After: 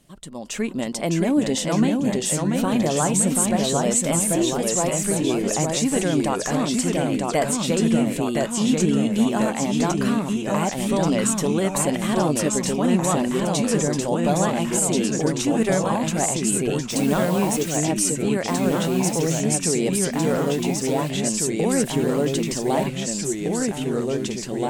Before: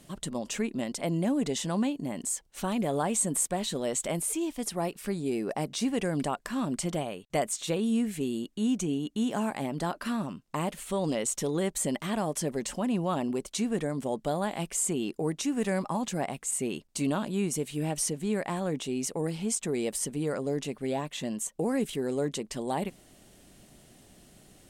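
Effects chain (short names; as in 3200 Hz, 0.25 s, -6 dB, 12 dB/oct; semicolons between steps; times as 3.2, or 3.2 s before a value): 16.89–17.76 added noise white -46 dBFS; AGC gain up to 11.5 dB; echoes that change speed 0.578 s, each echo -1 st, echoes 3; flange 0.18 Hz, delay 0.3 ms, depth 6.2 ms, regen +85%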